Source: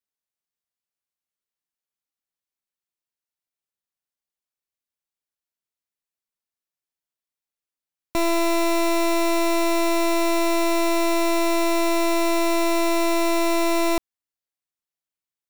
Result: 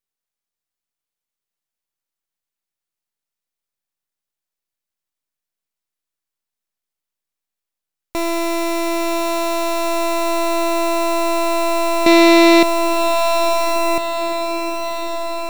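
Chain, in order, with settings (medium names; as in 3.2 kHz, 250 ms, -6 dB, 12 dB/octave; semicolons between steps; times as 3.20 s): half-wave rectifier; 12.06–12.63 s: graphic EQ 125/250/500/2000/4000 Hz +11/+11/+11/+10/+11 dB; echo that smears into a reverb 976 ms, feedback 73%, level -9.5 dB; trim +7 dB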